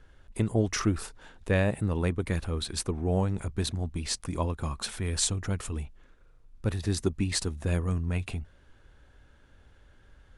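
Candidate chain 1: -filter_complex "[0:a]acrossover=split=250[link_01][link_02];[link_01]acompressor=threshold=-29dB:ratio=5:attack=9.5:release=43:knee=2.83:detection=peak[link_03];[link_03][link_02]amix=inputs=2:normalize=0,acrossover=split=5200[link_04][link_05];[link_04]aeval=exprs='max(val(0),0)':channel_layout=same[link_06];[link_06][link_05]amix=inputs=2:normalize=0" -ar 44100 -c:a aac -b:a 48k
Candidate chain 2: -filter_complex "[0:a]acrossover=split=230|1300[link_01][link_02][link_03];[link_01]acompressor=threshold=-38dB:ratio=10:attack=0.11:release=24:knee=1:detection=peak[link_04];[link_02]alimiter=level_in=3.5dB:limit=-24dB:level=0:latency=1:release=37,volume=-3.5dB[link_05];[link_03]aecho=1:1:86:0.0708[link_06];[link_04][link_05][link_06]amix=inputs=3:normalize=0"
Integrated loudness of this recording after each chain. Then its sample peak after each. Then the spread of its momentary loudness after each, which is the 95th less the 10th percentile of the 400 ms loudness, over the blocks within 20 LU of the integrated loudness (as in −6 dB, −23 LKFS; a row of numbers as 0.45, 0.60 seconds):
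−36.0, −35.0 LKFS; −14.0, −15.0 dBFS; 11, 11 LU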